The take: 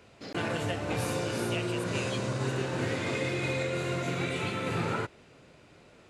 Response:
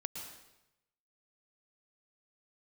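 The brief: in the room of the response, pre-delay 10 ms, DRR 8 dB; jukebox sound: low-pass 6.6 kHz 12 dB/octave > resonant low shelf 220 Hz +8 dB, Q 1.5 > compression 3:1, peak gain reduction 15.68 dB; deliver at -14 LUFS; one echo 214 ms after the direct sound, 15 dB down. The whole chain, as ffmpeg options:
-filter_complex "[0:a]aecho=1:1:214:0.178,asplit=2[s0][s1];[1:a]atrim=start_sample=2205,adelay=10[s2];[s1][s2]afir=irnorm=-1:irlink=0,volume=0.422[s3];[s0][s3]amix=inputs=2:normalize=0,lowpass=6600,lowshelf=f=220:t=q:w=1.5:g=8,acompressor=threshold=0.01:ratio=3,volume=18.8"

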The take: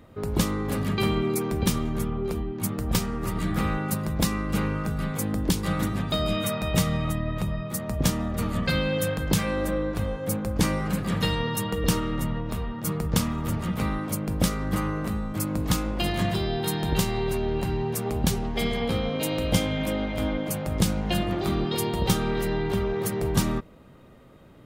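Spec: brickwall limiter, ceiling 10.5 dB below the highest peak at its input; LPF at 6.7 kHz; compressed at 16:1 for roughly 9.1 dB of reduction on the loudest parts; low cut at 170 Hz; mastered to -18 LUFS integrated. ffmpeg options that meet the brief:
-af "highpass=170,lowpass=6700,acompressor=threshold=0.0355:ratio=16,volume=7.94,alimiter=limit=0.355:level=0:latency=1"

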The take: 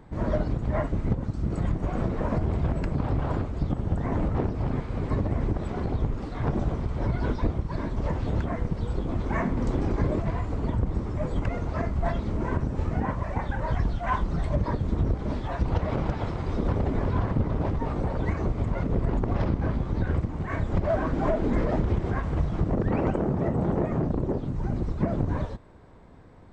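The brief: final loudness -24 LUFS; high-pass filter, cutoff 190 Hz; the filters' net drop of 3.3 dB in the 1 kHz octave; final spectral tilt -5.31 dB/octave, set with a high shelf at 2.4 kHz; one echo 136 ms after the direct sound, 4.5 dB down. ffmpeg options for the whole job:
-af "highpass=190,equalizer=f=1000:t=o:g=-5,highshelf=f=2400:g=4.5,aecho=1:1:136:0.596,volume=2.37"

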